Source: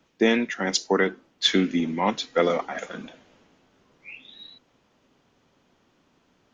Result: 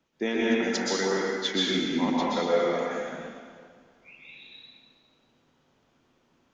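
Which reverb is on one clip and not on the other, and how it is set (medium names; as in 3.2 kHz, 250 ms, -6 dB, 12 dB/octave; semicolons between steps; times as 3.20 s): plate-style reverb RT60 1.9 s, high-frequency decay 0.8×, pre-delay 110 ms, DRR -6 dB; trim -9.5 dB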